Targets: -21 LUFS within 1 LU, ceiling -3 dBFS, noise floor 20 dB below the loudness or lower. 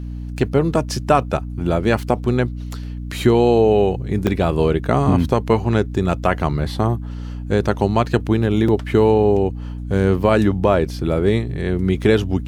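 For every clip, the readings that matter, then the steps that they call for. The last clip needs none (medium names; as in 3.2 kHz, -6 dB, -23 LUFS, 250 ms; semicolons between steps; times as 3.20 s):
dropouts 1; longest dropout 4.3 ms; hum 60 Hz; highest harmonic 300 Hz; hum level -26 dBFS; loudness -18.5 LUFS; peak level -2.0 dBFS; loudness target -21.0 LUFS
-> interpolate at 4.27 s, 4.3 ms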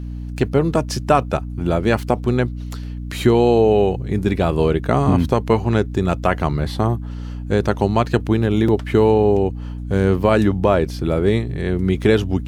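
dropouts 0; hum 60 Hz; highest harmonic 300 Hz; hum level -26 dBFS
-> de-hum 60 Hz, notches 5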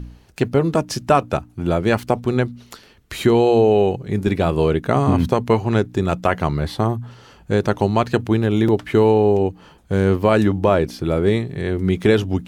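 hum not found; loudness -18.5 LUFS; peak level -2.5 dBFS; loudness target -21.0 LUFS
-> trim -2.5 dB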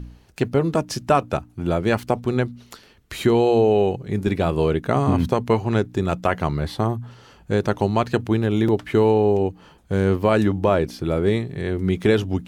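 loudness -21.0 LUFS; peak level -5.0 dBFS; noise floor -52 dBFS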